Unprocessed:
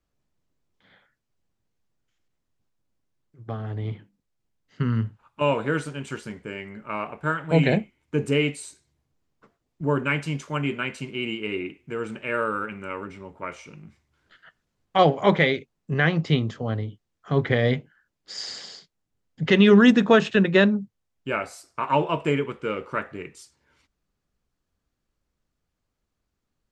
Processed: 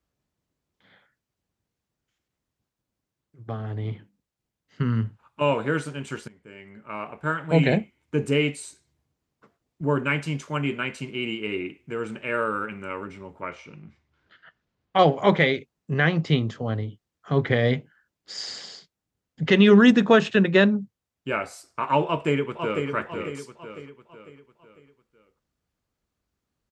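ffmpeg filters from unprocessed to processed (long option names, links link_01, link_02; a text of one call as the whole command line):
ffmpeg -i in.wav -filter_complex "[0:a]asettb=1/sr,asplit=3[link_01][link_02][link_03];[link_01]atrim=end=13.424[link_04];[link_02]atrim=start=13.42:end=14.99,asetpts=PTS-STARTPTS,afade=type=in:duration=0.004:curve=qsin,afade=type=out:start_time=1.566:duration=0.004:curve=qsin,lowpass=4500[link_05];[link_03]atrim=start=14.986[link_06];[link_04][link_05]acrossfade=duration=0.004:curve1=hsin:curve2=qsin[link_07];[link_07][link_06]acrossfade=duration=0.004:curve1=qsin:curve2=hsin,asplit=2[link_08][link_09];[link_09]afade=type=in:start_time=22.05:duration=0.01,afade=type=out:start_time=22.89:duration=0.01,aecho=0:1:500|1000|1500|2000|2500:0.501187|0.225534|0.10149|0.0456707|0.0205518[link_10];[link_08][link_10]amix=inputs=2:normalize=0,asplit=2[link_11][link_12];[link_11]atrim=end=6.28,asetpts=PTS-STARTPTS,afade=type=out:start_time=6.276:duration=0.004:curve=hsin:silence=0.105925[link_13];[link_12]atrim=start=6.28,asetpts=PTS-STARTPTS,afade=type=in:duration=1.13:silence=0.105925[link_14];[link_13][link_14]concat=n=2:v=0:a=1,highpass=43" out.wav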